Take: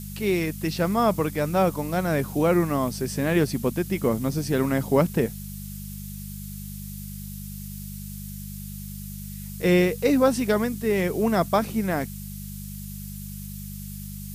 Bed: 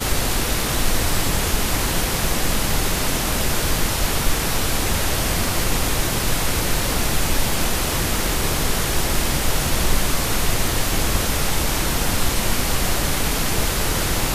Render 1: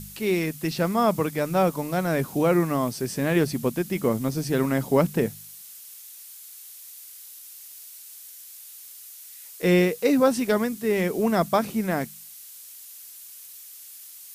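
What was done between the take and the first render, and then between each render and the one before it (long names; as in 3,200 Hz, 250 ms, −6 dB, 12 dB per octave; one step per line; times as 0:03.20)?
hum removal 50 Hz, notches 4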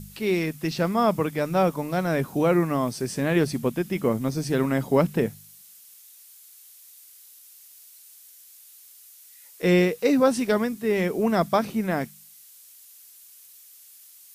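noise reduction from a noise print 6 dB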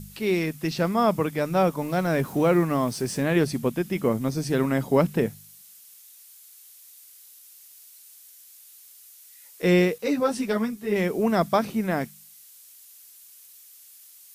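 0:01.81–0:03.23: mu-law and A-law mismatch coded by mu
0:09.98–0:10.96: string-ensemble chorus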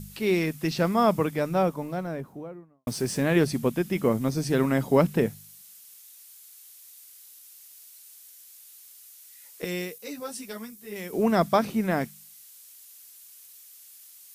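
0:01.06–0:02.87: fade out and dull
0:09.64–0:11.13: first-order pre-emphasis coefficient 0.8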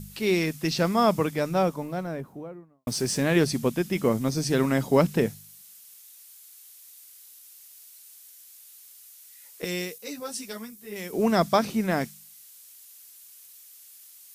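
dynamic equaliser 5,600 Hz, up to +6 dB, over −48 dBFS, Q 0.79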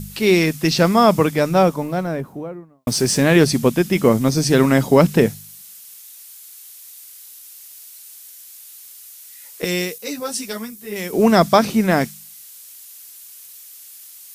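level +9 dB
brickwall limiter −2 dBFS, peak gain reduction 2 dB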